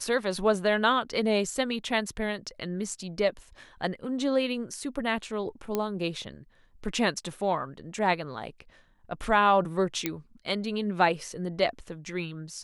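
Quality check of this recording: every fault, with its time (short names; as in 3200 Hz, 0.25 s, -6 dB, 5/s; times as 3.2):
5.75 pop -14 dBFS
10.06 pop -11 dBFS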